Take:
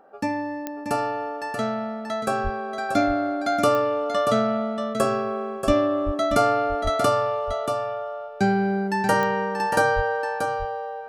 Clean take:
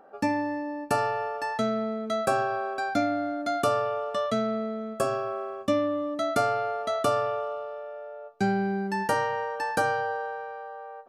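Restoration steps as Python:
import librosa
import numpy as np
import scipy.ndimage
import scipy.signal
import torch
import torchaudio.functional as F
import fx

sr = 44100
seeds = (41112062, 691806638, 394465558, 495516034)

y = fx.fix_declick_ar(x, sr, threshold=10.0)
y = fx.fix_deplosive(y, sr, at_s=(2.43, 5.66, 6.05, 6.83, 9.95))
y = fx.fix_echo_inverse(y, sr, delay_ms=633, level_db=-7.0)
y = fx.fix_level(y, sr, at_s=2.89, step_db=-4.5)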